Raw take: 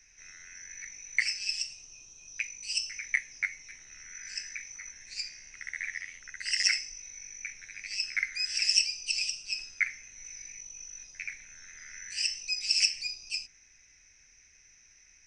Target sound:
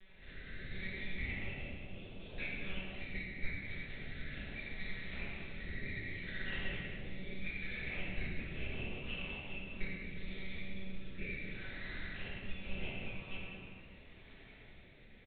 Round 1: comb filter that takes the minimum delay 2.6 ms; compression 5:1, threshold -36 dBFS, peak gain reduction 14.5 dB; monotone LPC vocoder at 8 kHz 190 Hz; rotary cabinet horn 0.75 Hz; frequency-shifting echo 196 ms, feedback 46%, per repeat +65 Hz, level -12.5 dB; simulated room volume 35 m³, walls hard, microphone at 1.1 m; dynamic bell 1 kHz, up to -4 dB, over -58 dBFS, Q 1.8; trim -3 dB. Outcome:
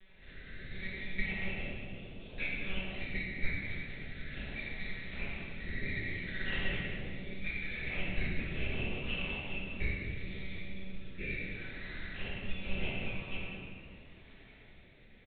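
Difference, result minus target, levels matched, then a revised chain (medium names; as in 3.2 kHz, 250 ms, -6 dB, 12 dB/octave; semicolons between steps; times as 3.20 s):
compression: peak gain reduction -5.5 dB
comb filter that takes the minimum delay 2.6 ms; compression 5:1, threshold -43 dBFS, peak gain reduction 20.5 dB; monotone LPC vocoder at 8 kHz 190 Hz; rotary cabinet horn 0.75 Hz; frequency-shifting echo 196 ms, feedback 46%, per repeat +65 Hz, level -12.5 dB; simulated room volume 35 m³, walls hard, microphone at 1.1 m; dynamic bell 1 kHz, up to -4 dB, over -58 dBFS, Q 1.8; trim -3 dB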